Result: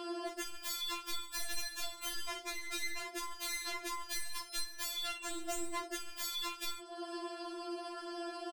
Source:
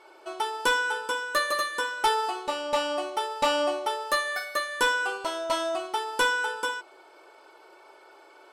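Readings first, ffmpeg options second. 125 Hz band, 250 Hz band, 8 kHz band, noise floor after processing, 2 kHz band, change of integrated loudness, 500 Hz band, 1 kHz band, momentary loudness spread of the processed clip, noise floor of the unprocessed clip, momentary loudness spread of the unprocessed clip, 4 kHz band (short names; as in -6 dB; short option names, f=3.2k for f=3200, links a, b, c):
n/a, -4.5 dB, -2.5 dB, -51 dBFS, -16.5 dB, -12.5 dB, -16.0 dB, -17.0 dB, 5 LU, -54 dBFS, 7 LU, -7.5 dB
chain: -filter_complex "[0:a]asplit=2[a][b];[b]aecho=0:1:142:0.0841[c];[a][c]amix=inputs=2:normalize=0,aeval=exprs='0.0266*(abs(mod(val(0)/0.0266+3,4)-2)-1)':c=same,acompressor=threshold=-49dB:ratio=16,afftfilt=real='re*4*eq(mod(b,16),0)':imag='im*4*eq(mod(b,16),0)':win_size=2048:overlap=0.75,volume=15dB"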